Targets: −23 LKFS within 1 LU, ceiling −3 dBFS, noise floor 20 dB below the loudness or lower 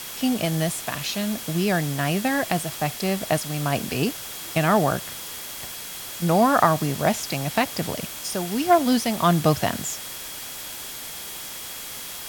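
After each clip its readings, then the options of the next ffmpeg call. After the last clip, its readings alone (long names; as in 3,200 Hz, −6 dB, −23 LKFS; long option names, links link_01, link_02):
interfering tone 3,300 Hz; level of the tone −45 dBFS; background noise floor −36 dBFS; target noise floor −45 dBFS; integrated loudness −24.5 LKFS; sample peak −2.5 dBFS; target loudness −23.0 LKFS
→ -af "bandreject=frequency=3300:width=30"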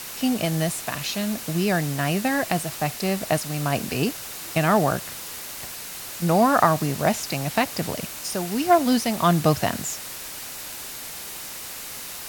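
interfering tone none found; background noise floor −36 dBFS; target noise floor −45 dBFS
→ -af "afftdn=noise_reduction=9:noise_floor=-36"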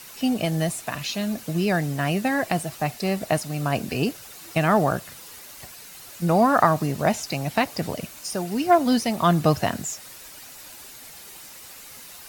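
background noise floor −43 dBFS; target noise floor −44 dBFS
→ -af "afftdn=noise_reduction=6:noise_floor=-43"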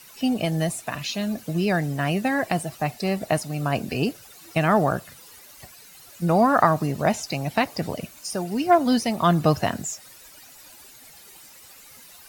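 background noise floor −48 dBFS; integrated loudness −24.0 LKFS; sample peak −2.5 dBFS; target loudness −23.0 LKFS
→ -af "volume=1dB,alimiter=limit=-3dB:level=0:latency=1"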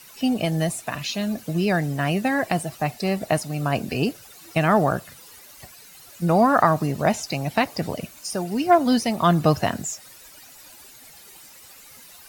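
integrated loudness −23.0 LKFS; sample peak −3.0 dBFS; background noise floor −47 dBFS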